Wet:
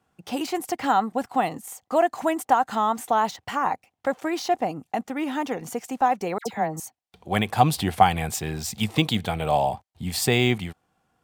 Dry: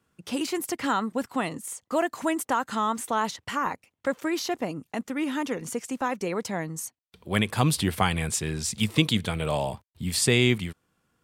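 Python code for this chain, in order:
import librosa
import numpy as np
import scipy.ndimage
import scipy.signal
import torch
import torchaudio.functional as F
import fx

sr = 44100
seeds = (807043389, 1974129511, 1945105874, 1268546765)

y = fx.peak_eq(x, sr, hz=760.0, db=14.0, octaves=0.37)
y = fx.dispersion(y, sr, late='lows', ms=81.0, hz=1600.0, at=(6.38, 6.8))
y = np.interp(np.arange(len(y)), np.arange(len(y))[::2], y[::2])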